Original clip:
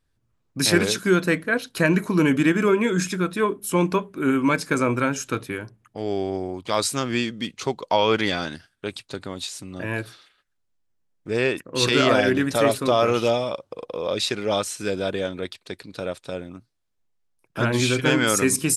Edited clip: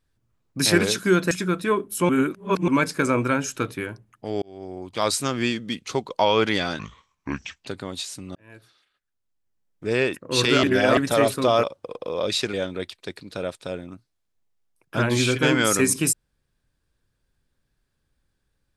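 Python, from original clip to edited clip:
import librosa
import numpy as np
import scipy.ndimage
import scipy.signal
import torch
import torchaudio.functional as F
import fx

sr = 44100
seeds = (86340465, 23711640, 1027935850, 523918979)

y = fx.edit(x, sr, fx.cut(start_s=1.31, length_s=1.72),
    fx.reverse_span(start_s=3.81, length_s=0.59),
    fx.fade_in_span(start_s=6.14, length_s=0.63),
    fx.speed_span(start_s=8.51, length_s=0.6, speed=0.68),
    fx.fade_in_span(start_s=9.79, length_s=1.53),
    fx.reverse_span(start_s=12.07, length_s=0.34),
    fx.cut(start_s=13.07, length_s=0.44),
    fx.cut(start_s=14.41, length_s=0.75), tone=tone)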